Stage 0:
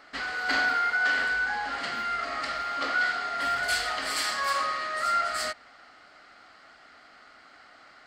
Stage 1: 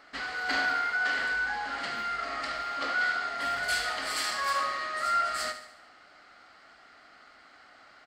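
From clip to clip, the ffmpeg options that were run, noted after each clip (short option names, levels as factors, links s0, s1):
-af "aecho=1:1:73|146|219|292|365|438:0.282|0.147|0.0762|0.0396|0.0206|0.0107,volume=0.75"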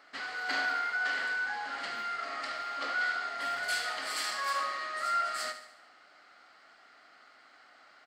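-af "highpass=f=300:p=1,volume=0.708"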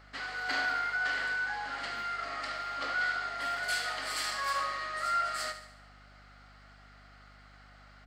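-af "aeval=exprs='val(0)+0.00141*(sin(2*PI*50*n/s)+sin(2*PI*2*50*n/s)/2+sin(2*PI*3*50*n/s)/3+sin(2*PI*4*50*n/s)/4+sin(2*PI*5*50*n/s)/5)':c=same"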